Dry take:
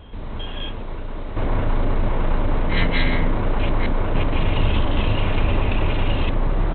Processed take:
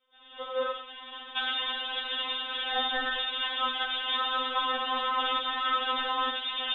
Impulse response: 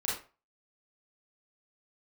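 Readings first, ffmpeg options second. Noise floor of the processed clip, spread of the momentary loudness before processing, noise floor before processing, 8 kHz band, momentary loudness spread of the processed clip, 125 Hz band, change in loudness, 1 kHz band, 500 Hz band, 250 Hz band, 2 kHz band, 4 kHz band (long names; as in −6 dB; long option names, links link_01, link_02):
−49 dBFS, 10 LU, −29 dBFS, can't be measured, 6 LU, below −40 dB, −5.5 dB, 0.0 dB, −9.5 dB, −20.0 dB, −2.5 dB, +5.5 dB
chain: -filter_complex "[0:a]agate=range=-33dB:threshold=-15dB:ratio=3:detection=peak,dynaudnorm=framelen=110:gausssize=9:maxgain=7dB,aexciter=amount=9.2:drive=2.7:freq=2200,lowpass=frequency=3200:width_type=q:width=0.5098,lowpass=frequency=3200:width_type=q:width=0.6013,lowpass=frequency=3200:width_type=q:width=0.9,lowpass=frequency=3200:width_type=q:width=2.563,afreqshift=-3800,asplit=2[link_01][link_02];[1:a]atrim=start_sample=2205[link_03];[link_02][link_03]afir=irnorm=-1:irlink=0,volume=-8.5dB[link_04];[link_01][link_04]amix=inputs=2:normalize=0,adynamicequalizer=threshold=0.0794:dfrequency=960:dqfactor=1.3:tfrequency=960:tqfactor=1.3:attack=5:release=100:ratio=0.375:range=2:mode=cutabove:tftype=bell,acompressor=threshold=-14dB:ratio=6,alimiter=limit=-16dB:level=0:latency=1:release=174,afftfilt=real='re*3.46*eq(mod(b,12),0)':imag='im*3.46*eq(mod(b,12),0)':win_size=2048:overlap=0.75,volume=3.5dB"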